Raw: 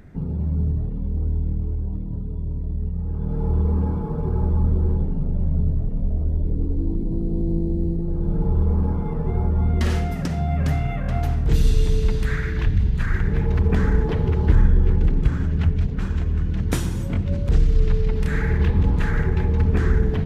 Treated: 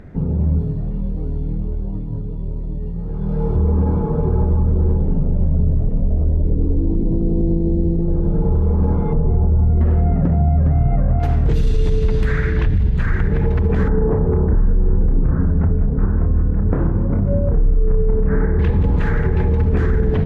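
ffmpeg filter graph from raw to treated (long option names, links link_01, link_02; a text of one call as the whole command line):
ffmpeg -i in.wav -filter_complex "[0:a]asettb=1/sr,asplit=3[link_01][link_02][link_03];[link_01]atrim=end=0.594[link_04];[link_02]atrim=start=0.59:end=3.56,asetpts=PTS-STARTPTS,afade=type=in:duration=0.004:curve=qsin,afade=type=out:start_time=2.966:duration=0.004:curve=qsin,flanger=delay=18.5:depth=2.2:speed=1.3,highshelf=frequency=2100:gain=10[link_05];[link_03]atrim=start=3.556[link_06];[link_04][link_05]acrossfade=duration=0.004:curve1=hsin:curve2=qsin[link_07];[link_07][link_06]acrossfade=duration=0.004:curve1=qsin:curve2=hsin,asettb=1/sr,asplit=3[link_08][link_09][link_10];[link_08]atrim=end=9.134[link_11];[link_09]atrim=start=9.13:end=11.2,asetpts=PTS-STARTPTS,afade=type=in:duration=0.004:curve=qsin,afade=type=out:start_time=2.066:duration=0.004:curve=qsin,lowpass=1100,lowshelf=frequency=170:gain=8.5[link_12];[link_10]atrim=start=11.196[link_13];[link_11][link_12]acrossfade=duration=0.004:curve1=hsin:curve2=qsin[link_14];[link_14][link_13]acrossfade=duration=0.004:curve1=qsin:curve2=hsin,asettb=1/sr,asplit=3[link_15][link_16][link_17];[link_15]atrim=end=13.884[link_18];[link_16]atrim=start=13.88:end=18.59,asetpts=PTS-STARTPTS,afade=type=in:duration=0.004:curve=qsin,afade=type=out:start_time=4.706:duration=0.004:curve=qsin,lowpass=frequency=1400:width=0.5412,lowpass=frequency=1400:width=1.3066,asplit=2[link_19][link_20];[link_20]adelay=30,volume=-3.5dB[link_21];[link_19][link_21]amix=inputs=2:normalize=0,atrim=end_sample=207711,bandreject=frequency=59.83:width_type=h:width=4,bandreject=frequency=119.66:width_type=h:width=4,bandreject=frequency=179.49:width_type=h:width=4,bandreject=frequency=239.32:width_type=h:width=4,bandreject=frequency=299.15:width_type=h:width=4,bandreject=frequency=358.98:width_type=h:width=4,bandreject=frequency=418.81:width_type=h:width=4,bandreject=frequency=478.64:width_type=h:width=4,bandreject=frequency=538.47:width_type=h:width=4,bandreject=frequency=598.3:width_type=h:width=4,bandreject=frequency=658.13:width_type=h:width=4,bandreject=frequency=717.96:width_type=h:width=4,bandreject=frequency=777.79:width_type=h:width=4,bandreject=frequency=837.62:width_type=h:width=4,bandreject=frequency=897.45:width_type=h:width=4,bandreject=frequency=957.28:width_type=h:width=4,bandreject=frequency=1017.11:width_type=h:width=4,bandreject=frequency=1076.94:width_type=h:width=4,bandreject=frequency=1136.77:width_type=h:width=4,bandreject=frequency=1196.6:width_type=h:width=4,bandreject=frequency=1256.43:width_type=h:width=4,bandreject=frequency=1316.26:width_type=h:width=4,bandreject=frequency=1376.09:width_type=h:width=4,bandreject=frequency=1435.92:width_type=h:width=4,bandreject=frequency=1495.75:width_type=h:width=4,bandreject=frequency=1555.58:width_type=h:width=4,bandreject=frequency=1615.41:width_type=h:width=4[link_22];[link_17]atrim=start=18.586[link_23];[link_18][link_22]acrossfade=duration=0.004:curve1=hsin:curve2=qsin[link_24];[link_24][link_23]acrossfade=duration=0.004:curve1=qsin:curve2=hsin,lowpass=frequency=2400:poles=1,equalizer=frequency=520:width=2:gain=4,alimiter=level_in=14dB:limit=-1dB:release=50:level=0:latency=1,volume=-7.5dB" out.wav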